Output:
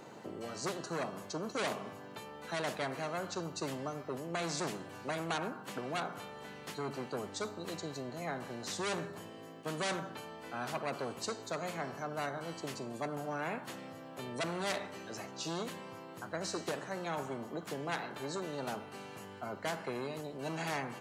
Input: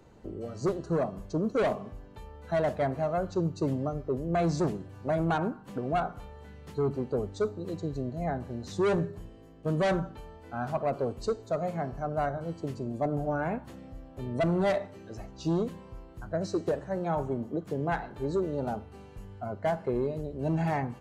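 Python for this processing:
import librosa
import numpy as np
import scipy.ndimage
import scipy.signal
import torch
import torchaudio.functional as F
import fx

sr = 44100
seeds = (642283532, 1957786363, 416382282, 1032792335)

y = scipy.signal.sosfilt(scipy.signal.bessel(8, 220.0, 'highpass', norm='mag', fs=sr, output='sos'), x)
y = fx.spectral_comp(y, sr, ratio=2.0)
y = F.gain(torch.from_numpy(y), -4.0).numpy()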